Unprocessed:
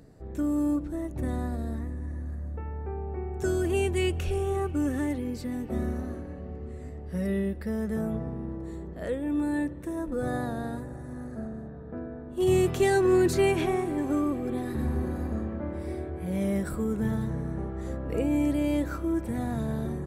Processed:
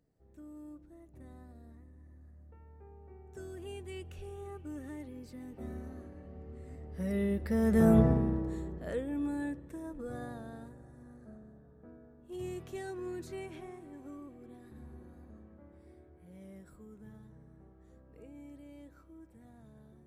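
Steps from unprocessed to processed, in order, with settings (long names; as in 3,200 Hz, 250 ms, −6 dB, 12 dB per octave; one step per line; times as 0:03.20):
source passing by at 0:08.01, 7 m/s, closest 1.4 metres
level +9 dB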